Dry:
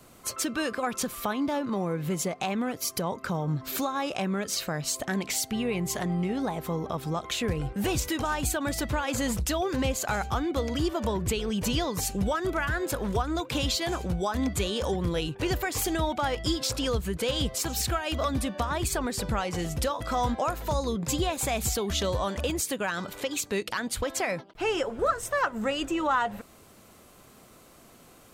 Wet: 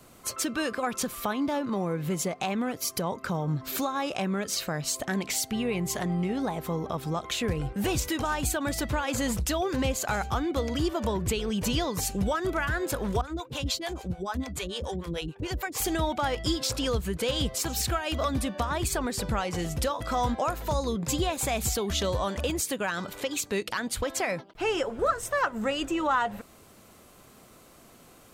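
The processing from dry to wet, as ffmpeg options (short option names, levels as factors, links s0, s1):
-filter_complex "[0:a]asettb=1/sr,asplit=3[s0][s1][s2];[s0]atrim=end=13.214[s3];[s1]atrim=start=13.21:end=15.8,asetpts=PTS-STARTPTS,afade=t=in:d=0.004:c=qsin,afade=t=out:st=2.586:d=0.004:c=qsin,acrossover=split=450[s4][s5];[s4]aeval=exprs='val(0)*(1-1/2+1/2*cos(2*PI*6.8*n/s))':c=same[s6];[s5]aeval=exprs='val(0)*(1-1/2-1/2*cos(2*PI*6.8*n/s))':c=same[s7];[s6][s7]amix=inputs=2:normalize=0[s8];[s2]atrim=start=15.796[s9];[s3][s8]acrossfade=d=0.004:c1=hsin:c2=qsin[s10];[s10][s9]acrossfade=d=0.004:c1=qsin:c2=hsin"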